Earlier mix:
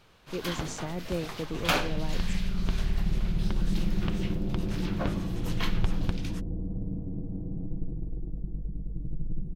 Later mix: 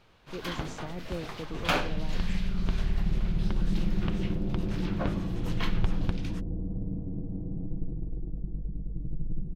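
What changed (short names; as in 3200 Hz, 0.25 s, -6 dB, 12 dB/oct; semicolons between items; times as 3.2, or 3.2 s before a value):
speech -4.5 dB; master: add high shelf 5500 Hz -9 dB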